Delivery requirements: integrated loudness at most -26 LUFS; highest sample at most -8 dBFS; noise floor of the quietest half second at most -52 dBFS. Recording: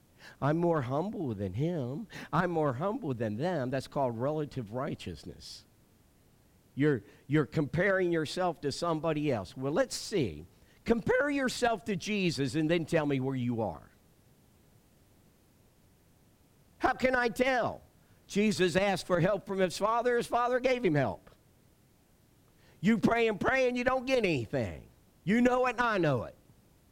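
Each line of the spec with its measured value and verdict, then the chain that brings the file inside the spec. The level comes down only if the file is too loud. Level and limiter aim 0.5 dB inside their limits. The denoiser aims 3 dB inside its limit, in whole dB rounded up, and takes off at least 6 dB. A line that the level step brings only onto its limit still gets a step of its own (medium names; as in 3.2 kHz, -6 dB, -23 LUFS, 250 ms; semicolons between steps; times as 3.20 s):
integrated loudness -30.5 LUFS: pass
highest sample -11.5 dBFS: pass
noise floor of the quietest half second -65 dBFS: pass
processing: none needed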